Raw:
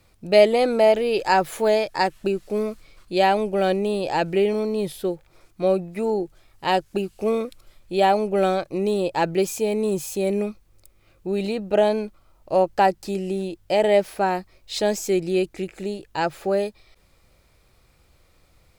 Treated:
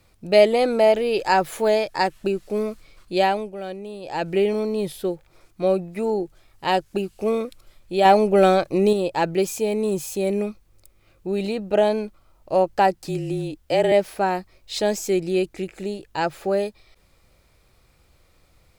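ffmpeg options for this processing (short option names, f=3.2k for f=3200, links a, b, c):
-filter_complex "[0:a]asettb=1/sr,asplit=3[a][b][c];[a]atrim=end=8.054[d];[b]atrim=start=8.05:end=8.93,asetpts=PTS-STARTPTS,afade=t=in:d=0.004:c=qsin,afade=t=out:st=0.876:d=0.004:c=qsin,acontrast=33[e];[c]atrim=start=8.926[f];[d][e]acrossfade=d=0.004:c1=hsin:c2=qsin[g];[g][f]acrossfade=d=0.004:c1=qsin:c2=hsin,asettb=1/sr,asplit=3[h][i][j];[h]atrim=end=12.964[k];[i]atrim=start=12.96:end=13.92,asetpts=PTS-STARTPTS,afade=t=in:d=0.004:c=qsin,afade=t=out:st=0.956:d=0.004:c=qsin,afreqshift=-31[l];[j]atrim=start=13.916[m];[k][l]acrossfade=d=0.004:c1=hsin:c2=qsin[n];[n][m]acrossfade=d=0.004:c1=qsin:c2=hsin,asplit=3[o][p][q];[o]atrim=end=3.54,asetpts=PTS-STARTPTS,afade=t=out:st=3.19:d=0.35:silence=0.266073[r];[p]atrim=start=3.54:end=4.01,asetpts=PTS-STARTPTS,volume=-11.5dB[s];[q]atrim=start=4.01,asetpts=PTS-STARTPTS,afade=t=in:d=0.35:silence=0.266073[t];[r][s][t]concat=n=3:v=0:a=1"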